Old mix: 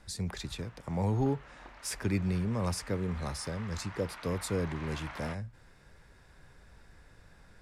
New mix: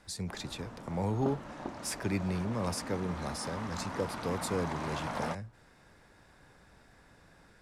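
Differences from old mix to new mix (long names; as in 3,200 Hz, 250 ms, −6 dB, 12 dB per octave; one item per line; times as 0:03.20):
background: remove resonant band-pass 2,200 Hz, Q 1.3
master: add low-shelf EQ 74 Hz −12 dB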